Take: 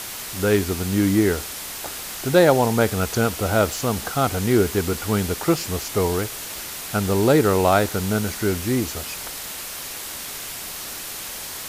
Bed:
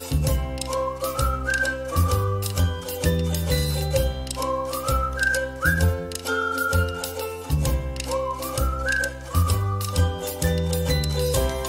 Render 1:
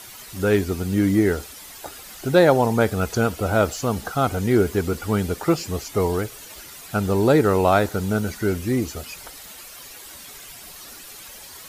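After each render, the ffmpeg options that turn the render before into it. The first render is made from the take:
-af "afftdn=nr=11:nf=-33"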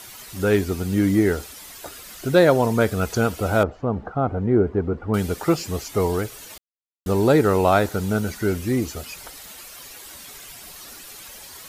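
-filter_complex "[0:a]asettb=1/sr,asplit=3[s0][s1][s2];[s0]atrim=end=1.724[s3];[s1]atrim=start=1.72:end=3.01,asetpts=PTS-STARTPTS,afade=t=in:d=0.004:c=qsin,afade=t=out:st=1.286:d=0.004:c=qsin,bandreject=f=820:w=6.9[s4];[s2]atrim=start=3.006[s5];[s3][s4]acrossfade=d=0.004:c1=hsin:c2=qsin[s6];[s6][s5]acrossfade=d=0.004:c1=qsin:c2=hsin,asettb=1/sr,asplit=3[s7][s8][s9];[s7]atrim=end=3.634[s10];[s8]atrim=start=3.63:end=5.14,asetpts=PTS-STARTPTS,afade=t=in:d=0.004:c=qsin,afade=t=out:st=1.506:d=0.004:c=qsin,lowpass=1000[s11];[s9]atrim=start=5.136[s12];[s10][s11]acrossfade=d=0.004:c1=hsin:c2=qsin[s13];[s13][s12]acrossfade=d=0.004:c1=qsin:c2=hsin,asplit=3[s14][s15][s16];[s14]atrim=end=6.58,asetpts=PTS-STARTPTS,afade=t=out:st=6.576:d=0.004:c=hsin[s17];[s15]atrim=start=6.58:end=7.06,asetpts=PTS-STARTPTS,volume=0[s18];[s16]atrim=start=7.06,asetpts=PTS-STARTPTS,afade=t=in:d=0.004:c=hsin[s19];[s17][s18][s19]concat=n=3:v=0:a=1"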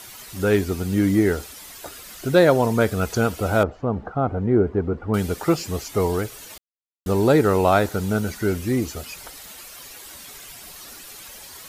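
-af anull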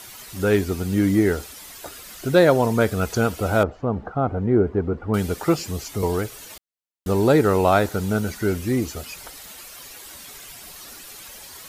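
-filter_complex "[0:a]asettb=1/sr,asplit=3[s0][s1][s2];[s0]atrim=end=5.584[s3];[s1]atrim=start=5.58:end=6.03,asetpts=PTS-STARTPTS,afade=t=in:d=0.004:c=qsin,afade=t=out:st=0.446:d=0.004:c=qsin,acrossover=split=290|3000[s4][s5][s6];[s5]acompressor=threshold=0.02:ratio=6:attack=3.2:release=140:knee=2.83:detection=peak[s7];[s4][s7][s6]amix=inputs=3:normalize=0[s8];[s2]atrim=start=6.026[s9];[s3][s8]acrossfade=d=0.004:c1=hsin:c2=qsin[s10];[s10][s9]acrossfade=d=0.004:c1=qsin:c2=hsin"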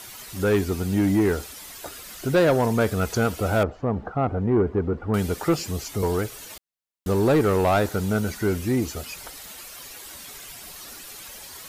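-af "asoftclip=type=tanh:threshold=0.224"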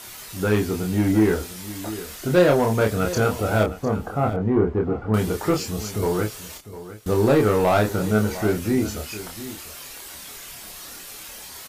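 -filter_complex "[0:a]asplit=2[s0][s1];[s1]adelay=28,volume=0.668[s2];[s0][s2]amix=inputs=2:normalize=0,aecho=1:1:703:0.188"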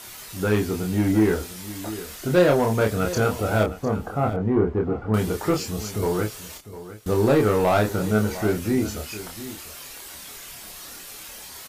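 -af "volume=0.891"

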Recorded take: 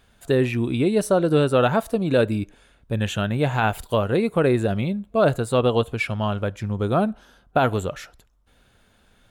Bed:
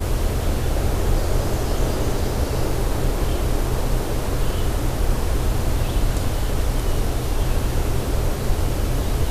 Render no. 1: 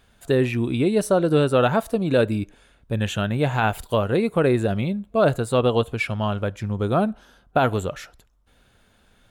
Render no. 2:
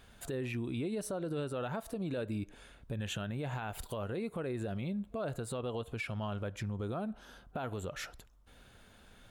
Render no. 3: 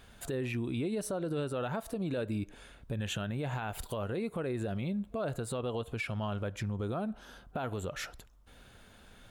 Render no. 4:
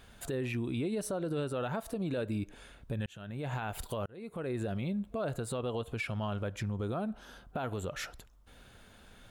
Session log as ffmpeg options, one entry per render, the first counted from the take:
-af anull
-af "acompressor=threshold=0.0251:ratio=2.5,alimiter=level_in=1.78:limit=0.0631:level=0:latency=1:release=105,volume=0.562"
-af "volume=1.33"
-filter_complex "[0:a]asplit=3[s0][s1][s2];[s0]atrim=end=3.06,asetpts=PTS-STARTPTS,afade=t=out:st=3.056:d=0.004:c=hsin[s3];[s1]atrim=start=3.06:end=4.06,asetpts=PTS-STARTPTS,afade=t=in:d=0.48,afade=t=out:st=0.996:d=0.004:c=hsin[s4];[s2]atrim=start=4.06,asetpts=PTS-STARTPTS,afade=t=in:d=0.48[s5];[s3][s4][s5]concat=n=3:v=0:a=1"

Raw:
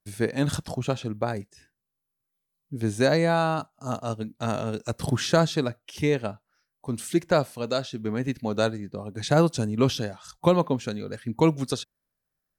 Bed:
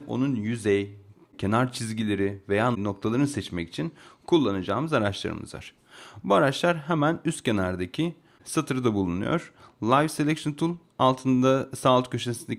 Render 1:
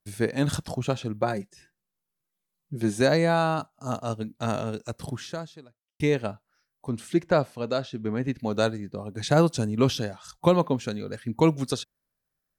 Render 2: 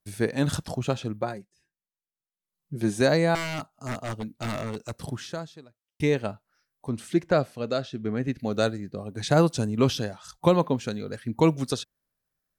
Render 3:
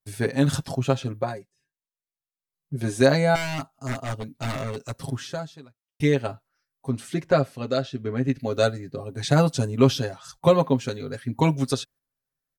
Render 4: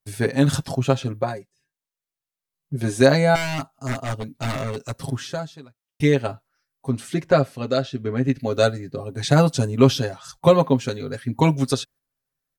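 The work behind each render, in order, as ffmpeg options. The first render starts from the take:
-filter_complex "[0:a]asettb=1/sr,asplit=3[s0][s1][s2];[s0]atrim=end=1.214[s3];[s1]atrim=start=1.21:end=3.01,asetpts=PTS-STARTPTS,afade=t=in:d=0.004:c=qsin,afade=t=out:st=1.796:d=0.004:c=qsin,aecho=1:1:5.6:0.65,atrim=end_sample=79380[s4];[s2]atrim=start=3.006[s5];[s3][s4]acrossfade=d=0.004:c1=hsin:c2=qsin[s6];[s6][s5]acrossfade=d=0.004:c1=qsin:c2=hsin,asettb=1/sr,asplit=3[s7][s8][s9];[s7]atrim=end=6.894[s10];[s8]atrim=start=6.89:end=8.4,asetpts=PTS-STARTPTS,afade=t=in:d=0.004:c=qsin,afade=t=out:st=1.506:d=0.004:c=qsin,lowpass=f=3000:p=1[s11];[s9]atrim=start=8.396[s12];[s10][s11]acrossfade=d=0.004:c1=hsin:c2=qsin[s13];[s13][s12]acrossfade=d=0.004:c1=qsin:c2=hsin,asplit=2[s14][s15];[s14]atrim=end=6,asetpts=PTS-STARTPTS,afade=t=out:st=4.58:d=1.42:c=qua[s16];[s15]atrim=start=6,asetpts=PTS-STARTPTS,afade=t=in:d=0.004:c=hsin[s17];[s16][s17]concat=n=2:v=0:a=1"
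-filter_complex "[0:a]asettb=1/sr,asplit=3[s0][s1][s2];[s0]atrim=end=3.354[s3];[s1]atrim=start=3.35:end=5.04,asetpts=PTS-STARTPTS,afade=t=in:d=0.004:c=qsin,afade=t=out:st=1.686:d=0.004:c=qsin,aeval=exprs='0.0631*(abs(mod(val(0)/0.0631+3,4)-2)-1)':c=same[s4];[s2]atrim=start=5.036[s5];[s3][s4]acrossfade=d=0.004:c1=hsin:c2=qsin[s6];[s6][s5]acrossfade=d=0.004:c1=qsin:c2=hsin,asettb=1/sr,asplit=3[s7][s8][s9];[s7]atrim=end=7.324[s10];[s8]atrim=start=7.32:end=9.08,asetpts=PTS-STARTPTS,afade=t=in:d=0.004:c=qsin,afade=t=out:st=1.756:d=0.004:c=qsin,equalizer=f=940:t=o:w=0.24:g=-9[s11];[s9]atrim=start=9.076[s12];[s10][s11]acrossfade=d=0.004:c1=hsin:c2=qsin[s13];[s13][s12]acrossfade=d=0.004:c1=qsin:c2=hsin,asplit=3[s14][s15][s16];[s14]atrim=end=1.46,asetpts=PTS-STARTPTS,afade=t=out:st=1.09:d=0.37:silence=0.177828[s17];[s15]atrim=start=1.46:end=2.38,asetpts=PTS-STARTPTS,volume=0.178[s18];[s16]atrim=start=2.38,asetpts=PTS-STARTPTS,afade=t=in:d=0.37:silence=0.177828[s19];[s17][s18][s19]concat=n=3:v=0:a=1"
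-af "aecho=1:1:7.4:0.79,agate=range=0.447:threshold=0.00316:ratio=16:detection=peak"
-af "volume=1.41"

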